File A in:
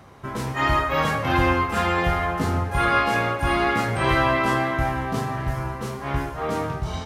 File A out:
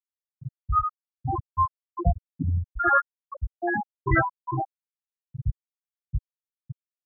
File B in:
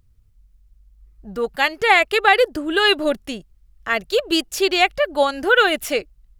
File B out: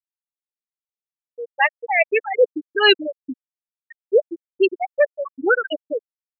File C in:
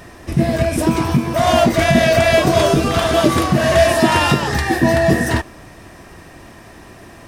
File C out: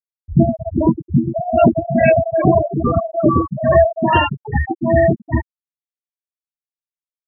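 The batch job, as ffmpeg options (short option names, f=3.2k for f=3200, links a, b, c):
-af "apsyclip=6dB,tremolo=f=2.4:d=0.73,afftfilt=real='re*gte(hypot(re,im),0.794)':imag='im*gte(hypot(re,im),0.794)':win_size=1024:overlap=0.75,volume=-2dB"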